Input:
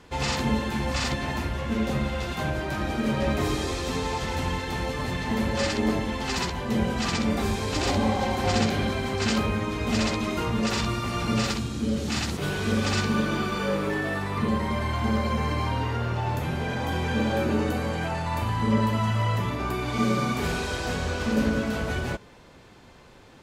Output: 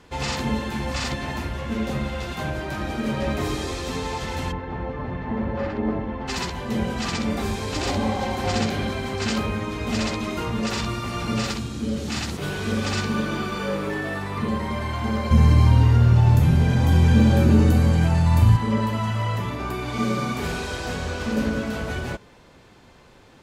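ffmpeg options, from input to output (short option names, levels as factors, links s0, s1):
-filter_complex "[0:a]asplit=3[s0][s1][s2];[s0]afade=t=out:st=4.51:d=0.02[s3];[s1]lowpass=1400,afade=t=in:st=4.51:d=0.02,afade=t=out:st=6.27:d=0.02[s4];[s2]afade=t=in:st=6.27:d=0.02[s5];[s3][s4][s5]amix=inputs=3:normalize=0,asettb=1/sr,asplit=3[s6][s7][s8];[s6]atrim=end=15.314[s9];[s7]atrim=start=15.31:end=18.57,asetpts=PTS-STARTPTS,afade=t=in:d=0.004:c=qsin,afade=t=out:st=3.256:d=0.004:c=qsin,bass=f=250:g=15,treble=f=4000:g=6[s10];[s8]atrim=start=18.566[s11];[s9][s10]acrossfade=d=0.004:c1=hsin:c2=qsin[s12];[s12][s11]acrossfade=d=0.004:c1=qsin:c2=hsin"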